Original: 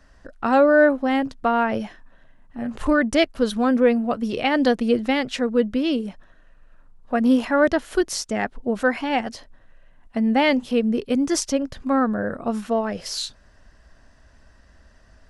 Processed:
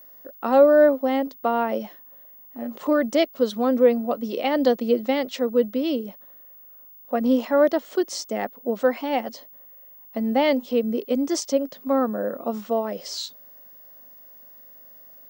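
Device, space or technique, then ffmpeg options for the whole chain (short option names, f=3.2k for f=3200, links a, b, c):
old television with a line whistle: -af "highpass=f=210:w=0.5412,highpass=f=210:w=1.3066,equalizer=f=540:t=q:w=4:g=6,equalizer=f=1.6k:t=q:w=4:g=-8,equalizer=f=2.5k:t=q:w=4:g=-5,lowpass=f=7.7k:w=0.5412,lowpass=f=7.7k:w=1.3066,aeval=exprs='val(0)+0.00794*sin(2*PI*15625*n/s)':c=same,volume=-2.5dB"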